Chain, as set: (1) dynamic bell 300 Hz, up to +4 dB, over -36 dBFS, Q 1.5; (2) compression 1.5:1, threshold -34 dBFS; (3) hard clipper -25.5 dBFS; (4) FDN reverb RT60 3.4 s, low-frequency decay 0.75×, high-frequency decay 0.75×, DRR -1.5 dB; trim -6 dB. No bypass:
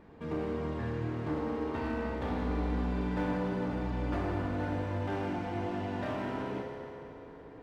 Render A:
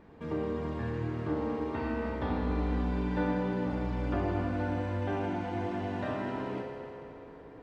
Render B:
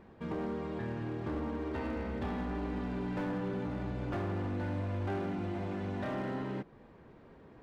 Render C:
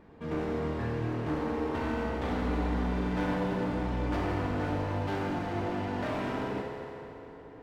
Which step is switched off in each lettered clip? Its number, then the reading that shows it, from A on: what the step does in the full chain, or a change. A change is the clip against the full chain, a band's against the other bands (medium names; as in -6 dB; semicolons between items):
3, distortion -13 dB; 4, crest factor change -7.5 dB; 2, mean gain reduction 4.0 dB